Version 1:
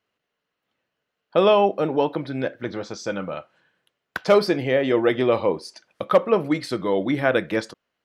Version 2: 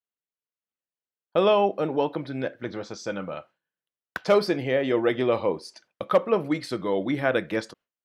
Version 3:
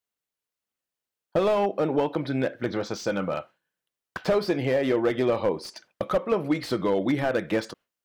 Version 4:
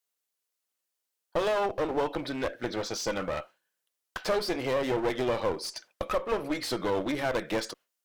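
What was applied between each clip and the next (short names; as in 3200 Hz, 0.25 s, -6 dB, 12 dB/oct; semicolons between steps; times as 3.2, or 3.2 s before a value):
gate with hold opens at -34 dBFS; gain -3.5 dB
compressor 3:1, threshold -27 dBFS, peak gain reduction 10 dB; slew limiter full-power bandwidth 41 Hz; gain +6 dB
tone controls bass -11 dB, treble +6 dB; one-sided clip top -33 dBFS, bottom -16.5 dBFS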